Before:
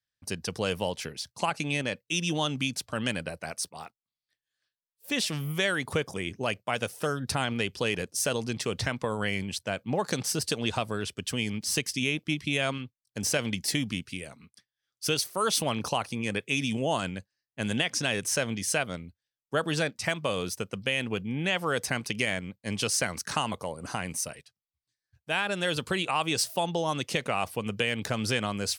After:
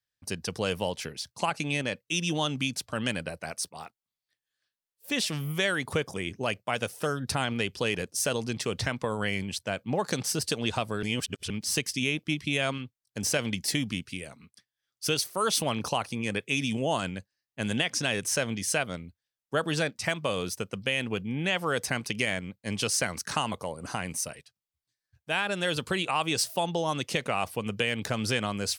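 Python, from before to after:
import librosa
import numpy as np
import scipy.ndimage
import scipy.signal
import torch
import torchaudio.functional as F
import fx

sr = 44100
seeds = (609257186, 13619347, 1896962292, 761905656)

y = fx.edit(x, sr, fx.reverse_span(start_s=11.03, length_s=0.47), tone=tone)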